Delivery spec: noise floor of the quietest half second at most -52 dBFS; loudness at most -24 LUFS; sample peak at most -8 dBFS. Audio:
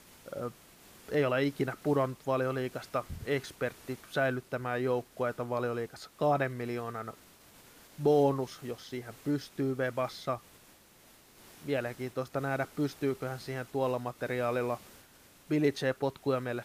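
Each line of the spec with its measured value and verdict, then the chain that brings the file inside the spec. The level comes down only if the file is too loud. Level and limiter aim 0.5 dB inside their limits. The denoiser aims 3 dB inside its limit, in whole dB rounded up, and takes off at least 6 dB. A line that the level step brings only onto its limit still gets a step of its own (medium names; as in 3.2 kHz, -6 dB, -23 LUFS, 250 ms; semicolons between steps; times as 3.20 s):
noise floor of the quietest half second -59 dBFS: pass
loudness -33.0 LUFS: pass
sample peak -15.5 dBFS: pass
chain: none needed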